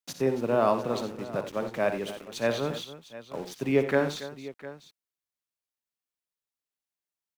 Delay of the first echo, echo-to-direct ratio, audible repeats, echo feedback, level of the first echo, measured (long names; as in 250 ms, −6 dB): 60 ms, −7.5 dB, 3, repeats not evenly spaced, −11.5 dB